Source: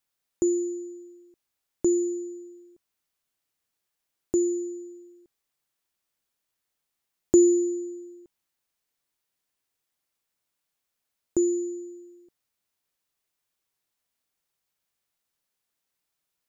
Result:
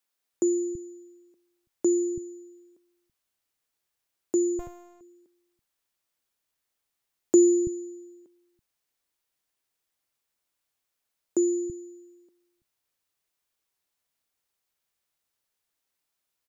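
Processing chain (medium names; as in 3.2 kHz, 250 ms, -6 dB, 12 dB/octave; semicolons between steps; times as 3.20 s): bands offset in time highs, lows 330 ms, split 180 Hz; 4.59–5.01 s: sliding maximum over 65 samples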